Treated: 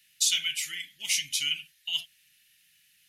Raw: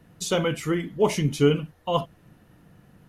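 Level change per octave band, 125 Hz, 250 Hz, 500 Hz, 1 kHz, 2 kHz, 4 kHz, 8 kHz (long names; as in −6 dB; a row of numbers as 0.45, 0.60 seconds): −33.0 dB, below −35 dB, below −40 dB, below −25 dB, +1.0 dB, +7.5 dB, +8.0 dB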